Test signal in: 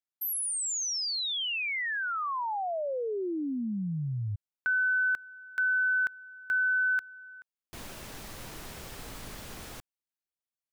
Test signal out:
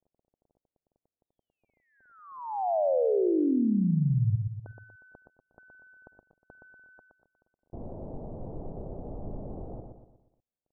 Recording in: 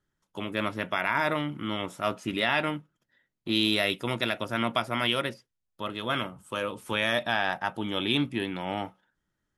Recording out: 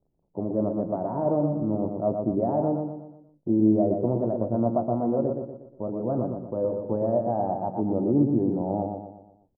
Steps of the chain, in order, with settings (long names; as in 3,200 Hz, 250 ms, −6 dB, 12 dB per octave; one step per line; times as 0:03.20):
repeating echo 120 ms, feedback 44%, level −5 dB
surface crackle 20 per second −45 dBFS
Butterworth low-pass 740 Hz 36 dB per octave
level +6 dB